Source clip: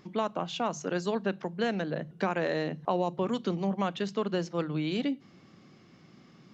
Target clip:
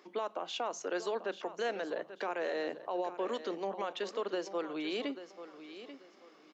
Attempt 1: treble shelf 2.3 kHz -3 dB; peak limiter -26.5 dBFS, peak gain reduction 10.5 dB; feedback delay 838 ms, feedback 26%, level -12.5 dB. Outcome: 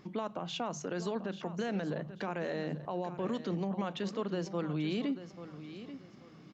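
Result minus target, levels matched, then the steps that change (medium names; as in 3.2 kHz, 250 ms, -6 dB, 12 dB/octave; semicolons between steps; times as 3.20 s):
250 Hz band +6.0 dB
add first: high-pass 350 Hz 24 dB/octave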